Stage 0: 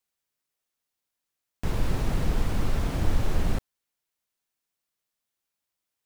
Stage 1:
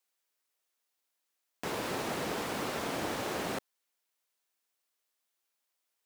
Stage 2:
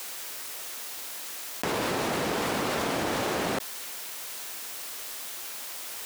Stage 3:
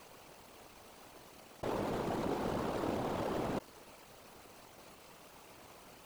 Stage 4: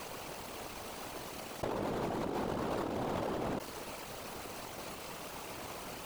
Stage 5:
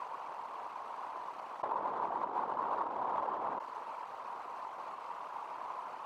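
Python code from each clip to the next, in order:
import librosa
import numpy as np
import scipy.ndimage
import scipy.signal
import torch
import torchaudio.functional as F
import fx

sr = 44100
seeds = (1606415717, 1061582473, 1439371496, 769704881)

y1 = scipy.signal.sosfilt(scipy.signal.butter(2, 350.0, 'highpass', fs=sr, output='sos'), x)
y1 = y1 * librosa.db_to_amplitude(2.0)
y2 = fx.env_flatten(y1, sr, amount_pct=100)
y2 = y2 * librosa.db_to_amplitude(4.5)
y3 = scipy.signal.medfilt(y2, 25)
y3 = fx.whisperise(y3, sr, seeds[0])
y3 = y3 * librosa.db_to_amplitude(-5.5)
y4 = fx.over_compress(y3, sr, threshold_db=-42.0, ratio=-1.0)
y4 = y4 * librosa.db_to_amplitude(6.5)
y5 = fx.bandpass_q(y4, sr, hz=1000.0, q=4.8)
y5 = y5 * librosa.db_to_amplitude(10.5)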